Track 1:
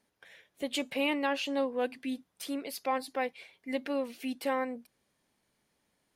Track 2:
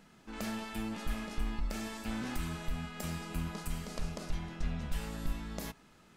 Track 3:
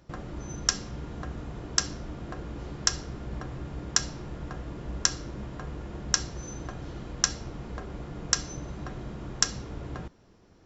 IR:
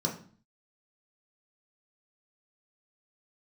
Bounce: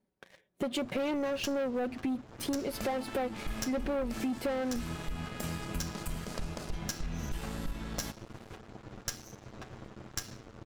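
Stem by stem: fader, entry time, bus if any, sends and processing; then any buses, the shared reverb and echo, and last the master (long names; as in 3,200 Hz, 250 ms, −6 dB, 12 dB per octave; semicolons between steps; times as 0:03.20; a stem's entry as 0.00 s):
−1.5 dB, 0.00 s, no send, tilt shelving filter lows +8.5 dB, about 790 Hz; comb filter 5.3 ms, depth 40%
−8.5 dB, 2.40 s, no send, upward compression, threshold −47 dBFS
−15.0 dB, 0.75 s, no send, lower of the sound and its delayed copy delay 9.1 ms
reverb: not used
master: leveller curve on the samples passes 3; downward compressor 6 to 1, threshold −31 dBFS, peak gain reduction 10.5 dB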